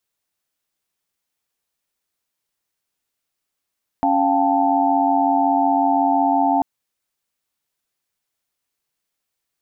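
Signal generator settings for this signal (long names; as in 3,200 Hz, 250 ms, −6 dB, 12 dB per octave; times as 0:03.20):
held notes C#4/F5/G5/A5 sine, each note −20 dBFS 2.59 s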